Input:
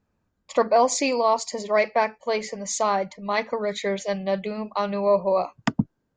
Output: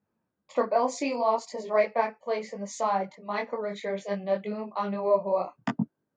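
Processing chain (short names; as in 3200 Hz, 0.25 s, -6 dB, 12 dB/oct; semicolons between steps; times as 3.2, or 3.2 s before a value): HPF 160 Hz 12 dB/oct; high shelf 3000 Hz -11 dB; detuned doubles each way 23 cents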